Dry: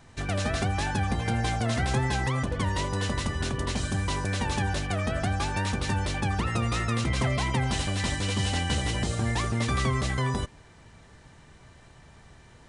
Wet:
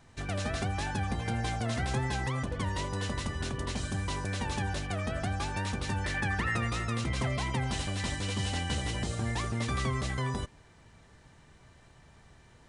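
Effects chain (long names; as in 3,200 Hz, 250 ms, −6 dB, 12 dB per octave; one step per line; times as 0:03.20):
0:06.04–0:06.70: parametric band 1,800 Hz +12 dB 0.52 octaves
level −5 dB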